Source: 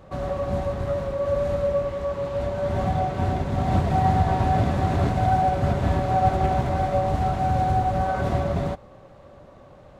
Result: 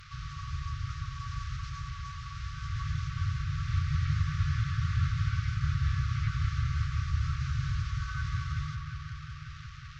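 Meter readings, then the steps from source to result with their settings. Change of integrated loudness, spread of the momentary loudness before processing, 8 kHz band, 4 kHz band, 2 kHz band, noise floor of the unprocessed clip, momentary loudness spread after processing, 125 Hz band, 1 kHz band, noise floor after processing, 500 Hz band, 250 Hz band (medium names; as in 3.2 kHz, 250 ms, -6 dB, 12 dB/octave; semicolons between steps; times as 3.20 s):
-9.5 dB, 6 LU, no reading, -2.0 dB, -4.5 dB, -48 dBFS, 11 LU, -5.0 dB, -20.5 dB, -44 dBFS, under -40 dB, under -10 dB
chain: one-bit delta coder 32 kbps, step -34.5 dBFS; feedback echo behind a low-pass 181 ms, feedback 83%, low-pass 1.8 kHz, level -7 dB; FFT band-reject 160–1100 Hz; trim -6.5 dB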